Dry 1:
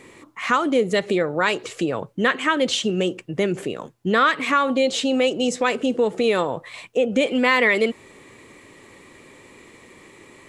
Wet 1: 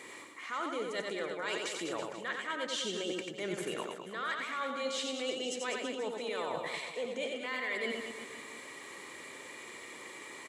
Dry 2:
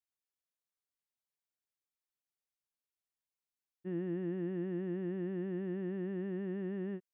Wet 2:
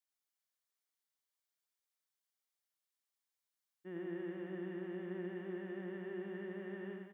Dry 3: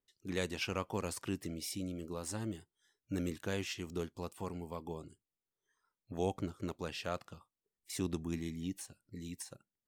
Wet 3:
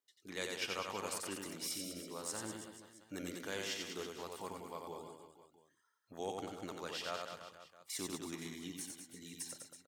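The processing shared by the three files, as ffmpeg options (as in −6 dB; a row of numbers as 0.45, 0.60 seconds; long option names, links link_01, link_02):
-af "highpass=frequency=790:poles=1,bandreject=frequency=2600:width=12,areverse,acompressor=threshold=-36dB:ratio=10,areverse,aecho=1:1:90|198|327.6|483.1|669.7:0.631|0.398|0.251|0.158|0.1,volume=1dB"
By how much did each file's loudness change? −16.5, −6.0, −2.5 LU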